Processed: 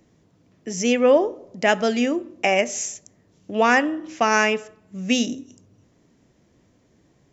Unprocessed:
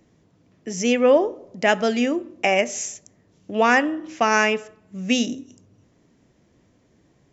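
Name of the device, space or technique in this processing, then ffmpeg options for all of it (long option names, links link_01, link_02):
exciter from parts: -filter_complex "[0:a]asplit=2[link_01][link_02];[link_02]highpass=3200,asoftclip=type=tanh:threshold=-20.5dB,volume=-13.5dB[link_03];[link_01][link_03]amix=inputs=2:normalize=0"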